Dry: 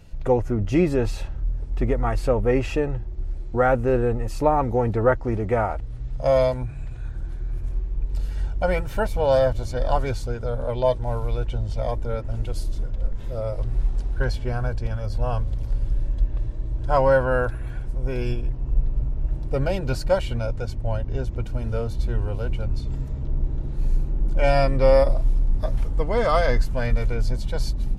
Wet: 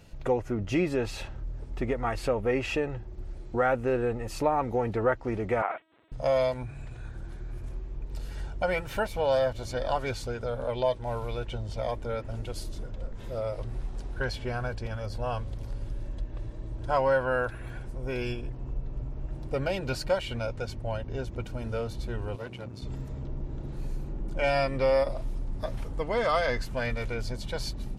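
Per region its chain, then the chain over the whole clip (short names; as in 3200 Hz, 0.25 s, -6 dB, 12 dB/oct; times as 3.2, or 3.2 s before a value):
5.62–6.12 LPC vocoder at 8 kHz pitch kept + dynamic EQ 2000 Hz, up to +5 dB, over -43 dBFS, Q 1.3 + HPF 550 Hz
22.36–22.82 HPF 96 Hz 24 dB/oct + tube stage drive 25 dB, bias 0.8
whole clip: low shelf 100 Hz -11.5 dB; compressor 1.5:1, threshold -33 dBFS; dynamic EQ 2700 Hz, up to +5 dB, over -48 dBFS, Q 0.82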